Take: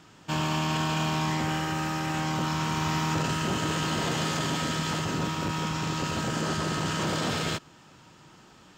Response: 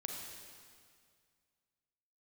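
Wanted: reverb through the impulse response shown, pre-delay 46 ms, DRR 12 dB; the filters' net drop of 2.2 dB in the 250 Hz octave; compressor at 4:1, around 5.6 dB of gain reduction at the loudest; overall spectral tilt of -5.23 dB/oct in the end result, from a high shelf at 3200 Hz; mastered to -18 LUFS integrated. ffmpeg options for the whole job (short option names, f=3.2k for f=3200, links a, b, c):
-filter_complex "[0:a]equalizer=f=250:t=o:g=-3.5,highshelf=f=3.2k:g=-8.5,acompressor=threshold=-32dB:ratio=4,asplit=2[a][b];[1:a]atrim=start_sample=2205,adelay=46[c];[b][c]afir=irnorm=-1:irlink=0,volume=-11.5dB[d];[a][d]amix=inputs=2:normalize=0,volume=17dB"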